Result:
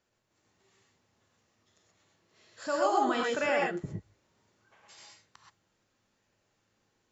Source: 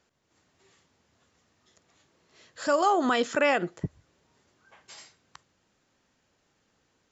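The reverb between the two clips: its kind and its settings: non-linear reverb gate 0.15 s rising, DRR -2 dB; gain -8 dB

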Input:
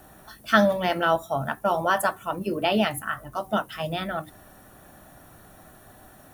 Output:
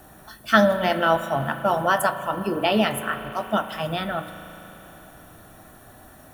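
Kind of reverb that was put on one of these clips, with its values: spring tank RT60 3.7 s, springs 36 ms, chirp 20 ms, DRR 9.5 dB; gain +2 dB

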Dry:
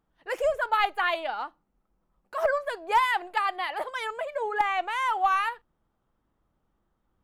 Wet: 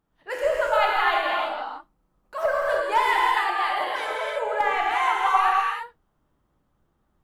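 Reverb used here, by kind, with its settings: non-linear reverb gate 0.37 s flat, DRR -4 dB; gain -1 dB

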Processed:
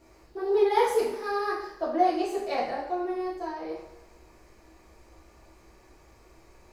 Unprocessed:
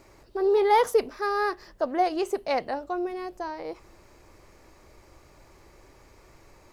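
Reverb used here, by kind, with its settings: two-slope reverb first 0.66 s, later 2 s, DRR -7.5 dB; gain -10 dB

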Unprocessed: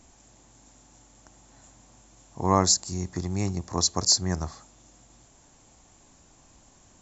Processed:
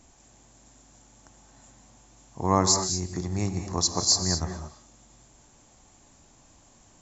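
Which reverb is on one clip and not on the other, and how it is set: non-linear reverb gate 0.25 s rising, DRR 6 dB; gain -1 dB

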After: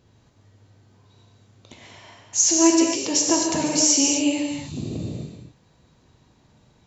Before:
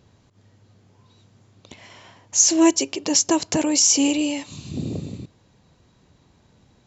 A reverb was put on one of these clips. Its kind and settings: non-linear reverb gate 0.28 s flat, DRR -1 dB; gain -3.5 dB

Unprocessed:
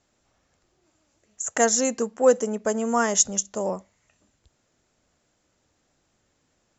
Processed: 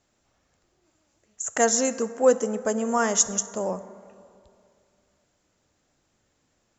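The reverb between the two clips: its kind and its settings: plate-style reverb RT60 2.4 s, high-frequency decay 0.4×, DRR 13 dB; gain -1 dB

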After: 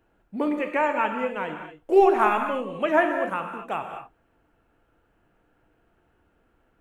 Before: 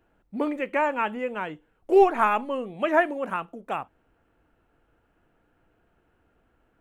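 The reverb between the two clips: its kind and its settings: non-linear reverb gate 0.27 s flat, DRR 4.5 dB

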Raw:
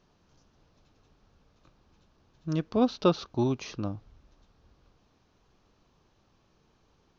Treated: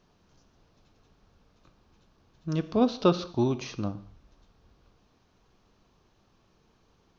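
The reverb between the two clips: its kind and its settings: non-linear reverb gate 0.24 s falling, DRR 12 dB; gain +1 dB

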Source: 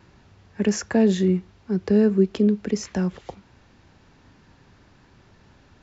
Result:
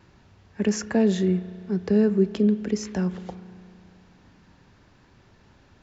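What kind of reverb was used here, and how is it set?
spring tank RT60 2.6 s, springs 33 ms, chirp 65 ms, DRR 14 dB; gain -2 dB

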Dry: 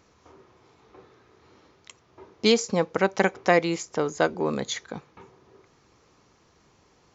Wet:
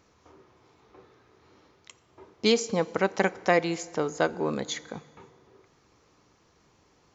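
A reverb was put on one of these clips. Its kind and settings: FDN reverb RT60 1.9 s, low-frequency decay 0.85×, high-frequency decay 0.8×, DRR 17.5 dB; gain -2.5 dB

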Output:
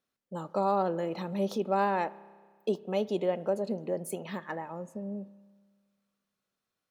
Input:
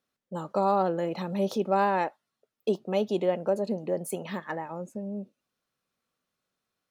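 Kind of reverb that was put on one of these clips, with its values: spring tank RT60 1.6 s, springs 30 ms, chirp 50 ms, DRR 18.5 dB; gain -3 dB

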